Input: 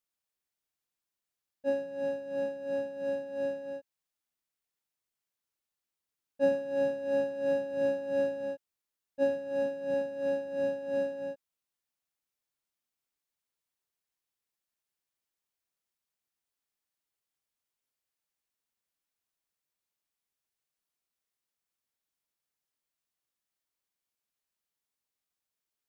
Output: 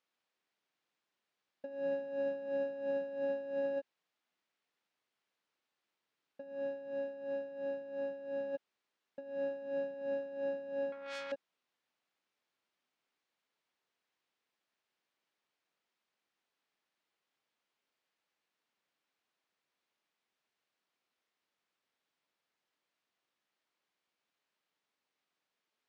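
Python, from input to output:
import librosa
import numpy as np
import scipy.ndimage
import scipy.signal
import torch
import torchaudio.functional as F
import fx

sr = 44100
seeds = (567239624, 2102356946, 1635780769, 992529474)

y = fx.over_compress(x, sr, threshold_db=-41.0, ratio=-1.0)
y = fx.bandpass_edges(y, sr, low_hz=200.0, high_hz=3600.0)
y = fx.transformer_sat(y, sr, knee_hz=3300.0, at=(10.92, 11.32))
y = F.gain(torch.from_numpy(y), 1.0).numpy()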